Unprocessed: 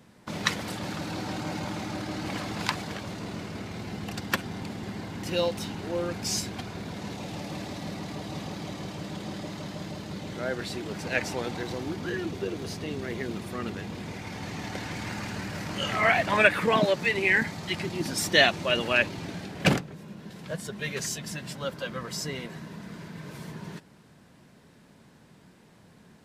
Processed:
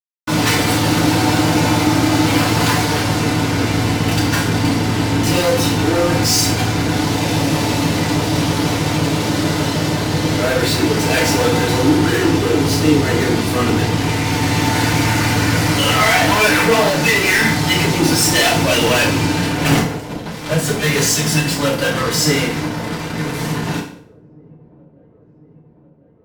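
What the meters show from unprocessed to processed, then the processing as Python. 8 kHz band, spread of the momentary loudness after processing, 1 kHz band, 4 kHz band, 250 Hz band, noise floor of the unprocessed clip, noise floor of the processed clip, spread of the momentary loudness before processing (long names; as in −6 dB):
+18.0 dB, 5 LU, +14.5 dB, +14.0 dB, +17.5 dB, −56 dBFS, −47 dBFS, 15 LU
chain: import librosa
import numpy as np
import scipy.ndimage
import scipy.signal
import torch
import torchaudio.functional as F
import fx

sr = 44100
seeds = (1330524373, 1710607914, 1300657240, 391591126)

y = fx.fuzz(x, sr, gain_db=38.0, gate_db=-41.0)
y = fx.echo_wet_lowpass(y, sr, ms=1048, feedback_pct=67, hz=470.0, wet_db=-24)
y = fx.rev_fdn(y, sr, rt60_s=0.57, lf_ratio=1.05, hf_ratio=0.9, size_ms=20.0, drr_db=-5.0)
y = y * librosa.db_to_amplitude(-5.0)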